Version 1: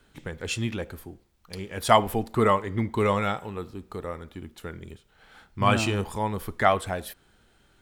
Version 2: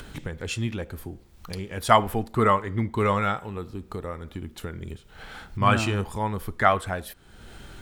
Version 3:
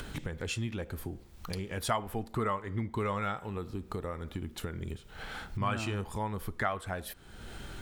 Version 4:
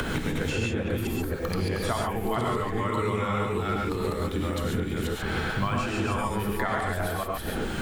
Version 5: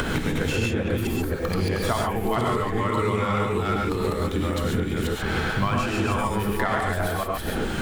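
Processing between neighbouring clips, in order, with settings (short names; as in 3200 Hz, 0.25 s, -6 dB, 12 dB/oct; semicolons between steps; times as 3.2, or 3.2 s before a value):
dynamic EQ 1400 Hz, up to +6 dB, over -38 dBFS, Q 1.4; upward compressor, threshold -28 dBFS; low shelf 170 Hz +5.5 dB; gain -2 dB
compressor 2.5:1, threshold -34 dBFS, peak gain reduction 15 dB
reverse delay 0.268 s, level -1 dB; non-linear reverb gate 0.16 s rising, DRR -2 dB; three-band squash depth 100%
tracing distortion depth 0.098 ms; gain +3.5 dB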